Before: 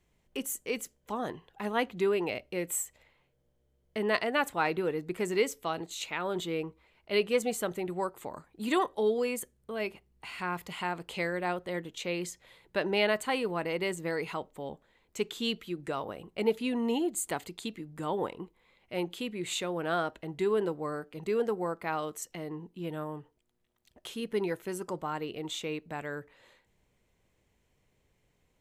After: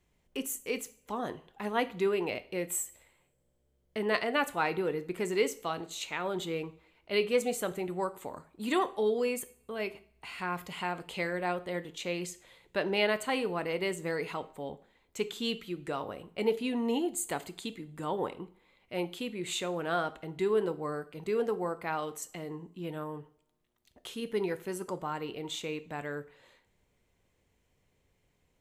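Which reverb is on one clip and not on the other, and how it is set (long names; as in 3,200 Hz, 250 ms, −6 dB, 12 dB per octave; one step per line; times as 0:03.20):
coupled-rooms reverb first 0.43 s, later 1.6 s, from −26 dB, DRR 11.5 dB
level −1 dB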